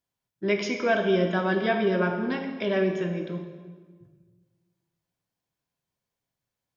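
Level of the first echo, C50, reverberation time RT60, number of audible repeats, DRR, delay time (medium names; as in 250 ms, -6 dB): no echo, 6.0 dB, 1.5 s, no echo, 4.0 dB, no echo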